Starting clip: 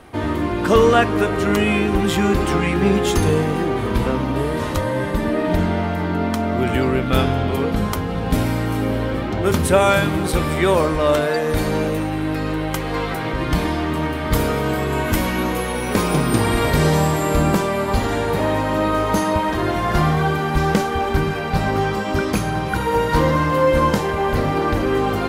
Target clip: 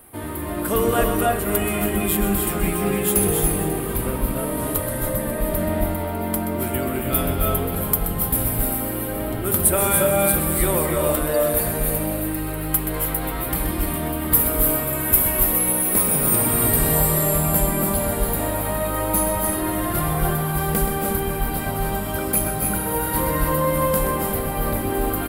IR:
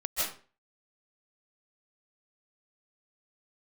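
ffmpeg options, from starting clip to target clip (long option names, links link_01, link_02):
-filter_complex "[0:a]aecho=1:1:541:0.158,aexciter=amount=12.1:drive=8.1:freq=9000,asplit=2[link_01][link_02];[1:a]atrim=start_sample=2205,lowshelf=frequency=350:gain=8,adelay=127[link_03];[link_02][link_03]afir=irnorm=-1:irlink=0,volume=-9dB[link_04];[link_01][link_04]amix=inputs=2:normalize=0,volume=-8.5dB"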